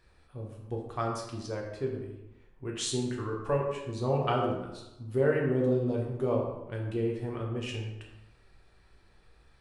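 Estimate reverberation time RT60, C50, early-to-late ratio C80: 0.95 s, 4.0 dB, 6.0 dB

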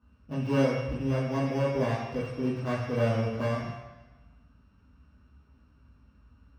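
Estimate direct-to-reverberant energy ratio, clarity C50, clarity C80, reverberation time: -9.5 dB, 2.0 dB, 4.0 dB, 1.1 s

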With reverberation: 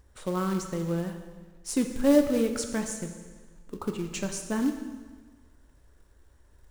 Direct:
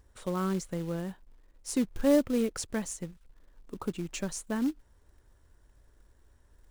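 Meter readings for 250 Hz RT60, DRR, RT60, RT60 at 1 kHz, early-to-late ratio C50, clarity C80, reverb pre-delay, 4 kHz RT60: 1.4 s, 5.0 dB, 1.4 s, 1.4 s, 7.0 dB, 8.5 dB, 6 ms, 1.3 s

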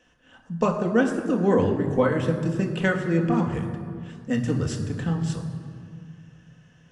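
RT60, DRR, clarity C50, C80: 2.2 s, 2.0 dB, 7.5 dB, 8.5 dB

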